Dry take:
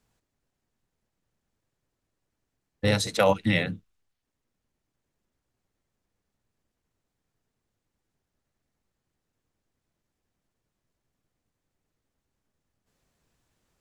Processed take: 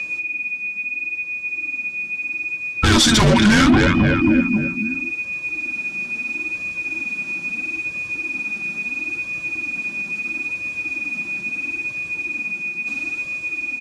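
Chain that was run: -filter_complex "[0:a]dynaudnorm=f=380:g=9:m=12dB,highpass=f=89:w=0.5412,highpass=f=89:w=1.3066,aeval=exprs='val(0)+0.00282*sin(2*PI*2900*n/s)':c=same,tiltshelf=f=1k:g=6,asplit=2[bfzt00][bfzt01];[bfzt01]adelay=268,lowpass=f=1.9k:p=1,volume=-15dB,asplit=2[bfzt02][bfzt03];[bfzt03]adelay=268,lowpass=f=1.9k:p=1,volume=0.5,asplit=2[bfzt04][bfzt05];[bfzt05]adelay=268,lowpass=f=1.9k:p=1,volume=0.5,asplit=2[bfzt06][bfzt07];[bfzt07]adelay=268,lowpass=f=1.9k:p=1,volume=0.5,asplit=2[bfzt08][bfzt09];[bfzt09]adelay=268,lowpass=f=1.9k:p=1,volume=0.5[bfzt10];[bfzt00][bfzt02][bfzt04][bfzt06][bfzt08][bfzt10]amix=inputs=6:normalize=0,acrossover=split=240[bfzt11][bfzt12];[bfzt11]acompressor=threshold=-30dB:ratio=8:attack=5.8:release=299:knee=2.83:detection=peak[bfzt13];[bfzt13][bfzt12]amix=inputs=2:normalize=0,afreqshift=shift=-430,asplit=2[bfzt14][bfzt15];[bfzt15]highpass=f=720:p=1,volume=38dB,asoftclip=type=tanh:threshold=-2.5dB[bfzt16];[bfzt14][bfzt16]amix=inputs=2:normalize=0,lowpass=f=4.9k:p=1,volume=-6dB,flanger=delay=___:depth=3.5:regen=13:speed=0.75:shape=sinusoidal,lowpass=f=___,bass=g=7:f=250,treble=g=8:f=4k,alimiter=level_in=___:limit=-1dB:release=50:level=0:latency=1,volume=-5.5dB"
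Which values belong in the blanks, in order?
1.7, 7.9k, 10dB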